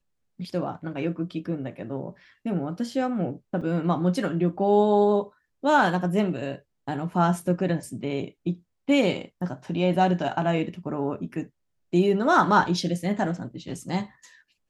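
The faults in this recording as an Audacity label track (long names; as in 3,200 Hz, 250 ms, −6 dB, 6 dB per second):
3.610000	3.620000	drop-out 5.2 ms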